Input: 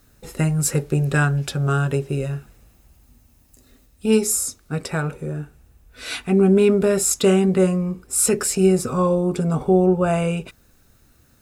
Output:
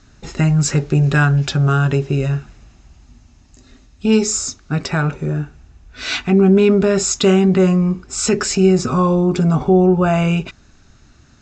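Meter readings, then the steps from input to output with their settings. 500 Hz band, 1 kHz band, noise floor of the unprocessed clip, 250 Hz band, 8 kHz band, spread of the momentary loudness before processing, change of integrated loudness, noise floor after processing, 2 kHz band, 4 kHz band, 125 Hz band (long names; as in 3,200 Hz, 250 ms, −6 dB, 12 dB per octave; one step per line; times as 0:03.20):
+2.5 dB, +5.0 dB, −57 dBFS, +5.0 dB, 0.0 dB, 13 LU, +4.0 dB, −50 dBFS, +5.0 dB, +7.0 dB, +6.0 dB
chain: Butterworth low-pass 7,200 Hz 72 dB per octave
parametric band 500 Hz −11 dB 0.27 octaves
in parallel at +1 dB: brickwall limiter −18.5 dBFS, peak gain reduction 12 dB
on the sum: level +1.5 dB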